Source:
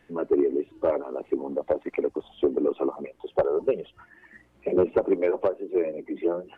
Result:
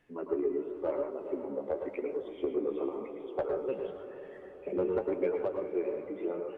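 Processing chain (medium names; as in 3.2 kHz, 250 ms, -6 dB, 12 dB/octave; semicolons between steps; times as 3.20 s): echo that smears into a reverb 450 ms, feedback 54%, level -11 dB; on a send at -4 dB: reverberation RT60 0.30 s, pre-delay 97 ms; on the sum: flange 0.94 Hz, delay 6.2 ms, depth 8.9 ms, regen +59%; trim -5.5 dB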